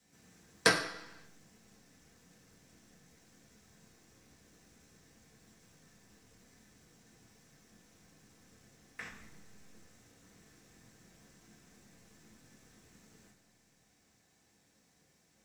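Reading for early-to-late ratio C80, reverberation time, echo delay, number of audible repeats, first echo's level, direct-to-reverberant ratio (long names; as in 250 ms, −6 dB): 10.5 dB, 0.95 s, no echo audible, no echo audible, no echo audible, −4.0 dB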